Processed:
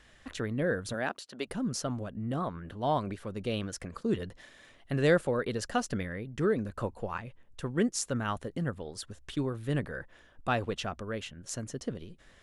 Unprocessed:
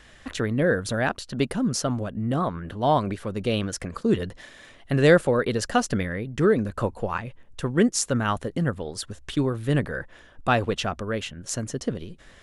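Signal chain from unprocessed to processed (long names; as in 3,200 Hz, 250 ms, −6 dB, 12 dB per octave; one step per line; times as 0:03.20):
0:00.93–0:01.46: high-pass filter 150 Hz → 440 Hz 12 dB per octave
level −8 dB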